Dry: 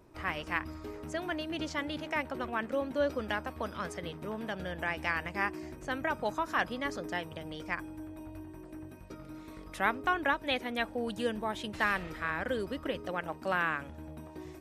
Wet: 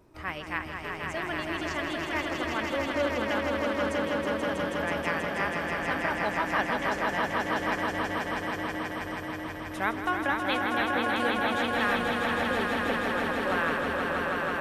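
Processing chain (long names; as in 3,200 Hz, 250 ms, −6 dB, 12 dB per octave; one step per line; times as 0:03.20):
echo that builds up and dies away 161 ms, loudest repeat 5, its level −4.5 dB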